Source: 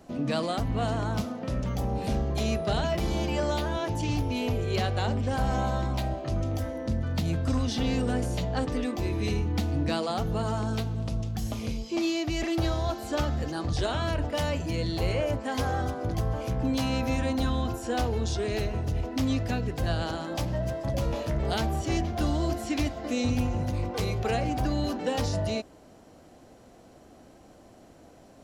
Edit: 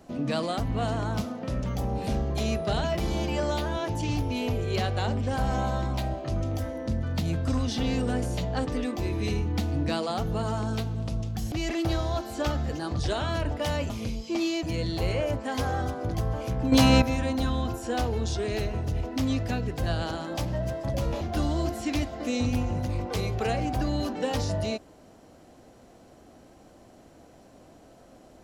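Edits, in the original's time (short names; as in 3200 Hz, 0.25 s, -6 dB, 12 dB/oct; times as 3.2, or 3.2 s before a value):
11.52–12.25 move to 14.63
16.72–17.02 gain +9.5 dB
21.21–22.05 cut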